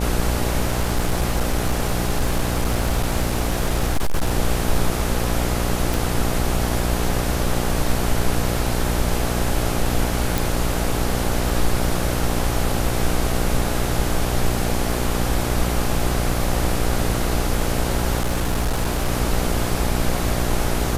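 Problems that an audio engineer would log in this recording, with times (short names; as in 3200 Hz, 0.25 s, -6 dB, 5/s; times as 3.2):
buzz 60 Hz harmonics 14 -24 dBFS
0.61–4.32 clipped -14.5 dBFS
5.94 pop
10.38 pop
14.92 gap 2.5 ms
18.2–19.09 clipped -16.5 dBFS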